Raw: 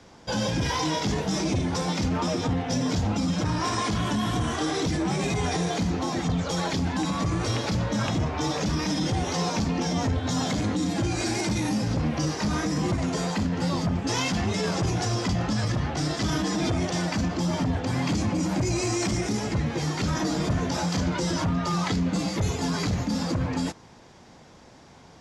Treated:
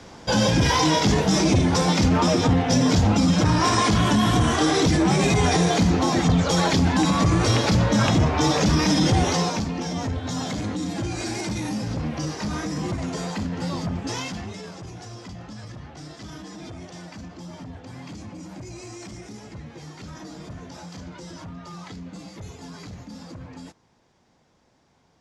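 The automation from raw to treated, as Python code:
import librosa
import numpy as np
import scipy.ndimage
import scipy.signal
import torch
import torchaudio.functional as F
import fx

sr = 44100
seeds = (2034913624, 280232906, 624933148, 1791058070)

y = fx.gain(x, sr, db=fx.line((9.26, 7.0), (9.69, -2.0), (14.07, -2.0), (14.76, -13.0)))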